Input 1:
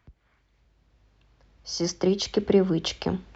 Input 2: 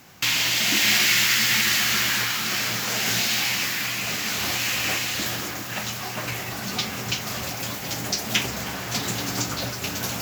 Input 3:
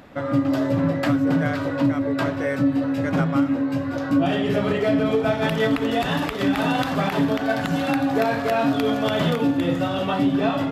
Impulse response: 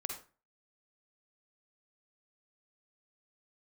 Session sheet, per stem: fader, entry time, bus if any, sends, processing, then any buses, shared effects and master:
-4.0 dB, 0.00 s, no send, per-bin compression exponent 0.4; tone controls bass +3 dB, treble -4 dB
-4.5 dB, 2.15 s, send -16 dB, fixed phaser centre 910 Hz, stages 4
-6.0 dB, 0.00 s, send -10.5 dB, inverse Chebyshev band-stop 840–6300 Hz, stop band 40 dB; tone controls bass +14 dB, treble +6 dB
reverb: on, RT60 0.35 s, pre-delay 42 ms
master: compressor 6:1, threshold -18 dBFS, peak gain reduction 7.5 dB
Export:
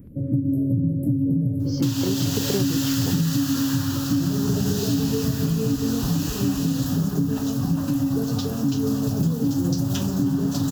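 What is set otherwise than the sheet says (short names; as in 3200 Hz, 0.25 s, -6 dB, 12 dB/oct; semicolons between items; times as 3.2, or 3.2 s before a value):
stem 1: missing per-bin compression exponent 0.4; stem 2: entry 2.15 s -> 1.60 s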